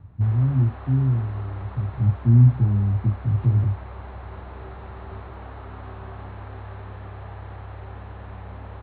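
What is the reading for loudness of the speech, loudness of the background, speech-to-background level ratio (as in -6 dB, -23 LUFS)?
-21.0 LUFS, -39.0 LUFS, 18.0 dB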